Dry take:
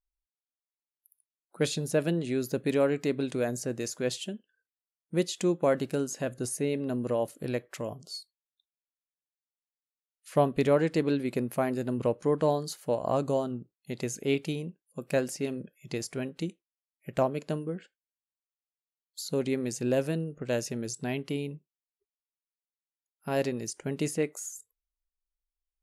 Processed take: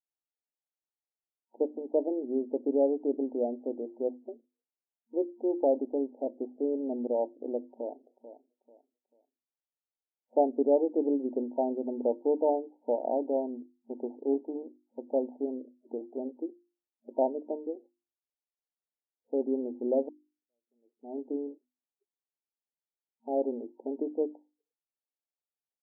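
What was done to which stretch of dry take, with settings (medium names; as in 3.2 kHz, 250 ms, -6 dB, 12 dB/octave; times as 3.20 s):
7.61–8.04 s: echo throw 440 ms, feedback 30%, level -12.5 dB
13.08–15.44 s: sorted samples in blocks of 16 samples
20.09–21.18 s: fade in exponential
whole clip: hum notches 50/100/150/200/250/300/350 Hz; FFT band-pass 230–930 Hz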